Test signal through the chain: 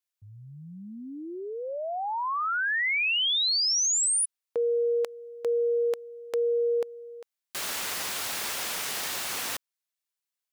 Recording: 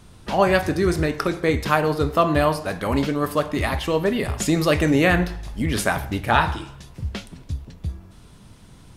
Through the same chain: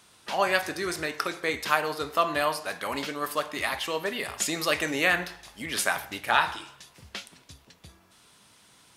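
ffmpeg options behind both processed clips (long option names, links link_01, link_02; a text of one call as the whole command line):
ffmpeg -i in.wav -af "highpass=frequency=1400:poles=1" out.wav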